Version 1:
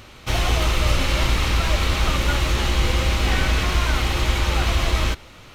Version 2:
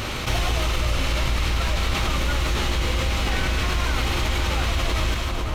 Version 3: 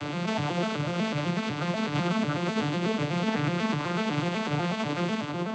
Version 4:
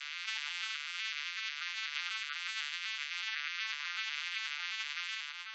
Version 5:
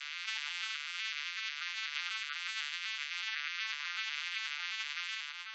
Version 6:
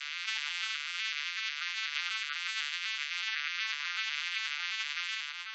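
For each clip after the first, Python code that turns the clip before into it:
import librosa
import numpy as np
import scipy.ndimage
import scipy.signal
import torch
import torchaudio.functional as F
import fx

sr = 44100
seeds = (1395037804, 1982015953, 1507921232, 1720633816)

y1 = fx.rider(x, sr, range_db=4, speed_s=0.5)
y1 = fx.echo_split(y1, sr, split_hz=1300.0, low_ms=495, high_ms=149, feedback_pct=52, wet_db=-11)
y1 = fx.env_flatten(y1, sr, amount_pct=70)
y1 = F.gain(torch.from_numpy(y1), -6.0).numpy()
y2 = fx.vocoder_arp(y1, sr, chord='minor triad', root=50, every_ms=124)
y3 = scipy.signal.sosfilt(scipy.signal.cheby2(4, 80, 290.0, 'highpass', fs=sr, output='sos'), y2)
y3 = fx.spec_gate(y3, sr, threshold_db=-20, keep='strong')
y4 = y3
y5 = scipy.signal.sosfilt(scipy.signal.butter(2, 760.0, 'highpass', fs=sr, output='sos'), y4)
y5 = F.gain(torch.from_numpy(y5), 3.5).numpy()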